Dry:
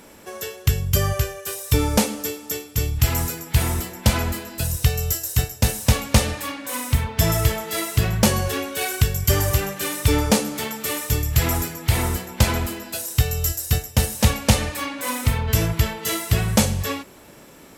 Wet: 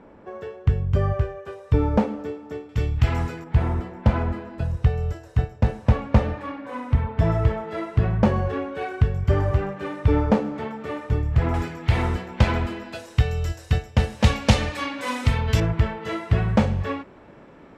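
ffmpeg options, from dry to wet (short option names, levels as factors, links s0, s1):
-af "asetnsamples=n=441:p=0,asendcmd='2.69 lowpass f 2200;3.44 lowpass f 1300;11.54 lowpass f 2600;14.24 lowpass f 4400;15.6 lowpass f 1800',lowpass=1200"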